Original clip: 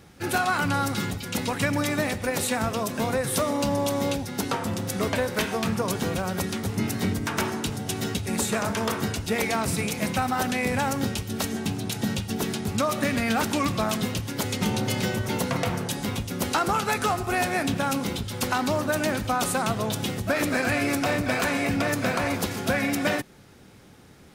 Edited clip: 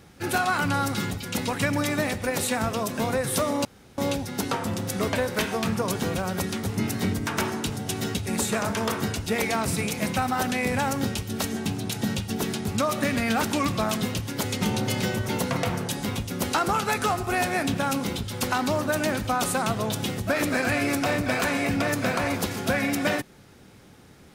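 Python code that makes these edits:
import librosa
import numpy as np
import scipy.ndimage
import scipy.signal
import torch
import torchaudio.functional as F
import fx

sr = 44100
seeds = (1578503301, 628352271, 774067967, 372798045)

y = fx.edit(x, sr, fx.room_tone_fill(start_s=3.65, length_s=0.33), tone=tone)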